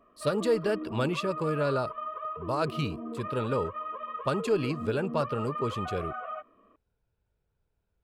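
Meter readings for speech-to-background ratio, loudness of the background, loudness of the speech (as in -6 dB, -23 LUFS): 6.5 dB, -37.5 LUFS, -31.0 LUFS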